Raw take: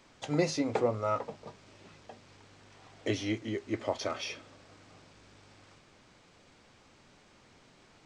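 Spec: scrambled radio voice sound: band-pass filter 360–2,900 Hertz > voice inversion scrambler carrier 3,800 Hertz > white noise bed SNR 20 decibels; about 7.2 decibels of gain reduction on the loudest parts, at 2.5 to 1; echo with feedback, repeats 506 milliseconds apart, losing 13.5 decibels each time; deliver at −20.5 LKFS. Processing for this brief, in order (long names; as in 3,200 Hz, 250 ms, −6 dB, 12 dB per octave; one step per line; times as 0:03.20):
downward compressor 2.5 to 1, threshold −33 dBFS
band-pass filter 360–2,900 Hz
repeating echo 506 ms, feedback 21%, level −13.5 dB
voice inversion scrambler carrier 3,800 Hz
white noise bed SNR 20 dB
level +17.5 dB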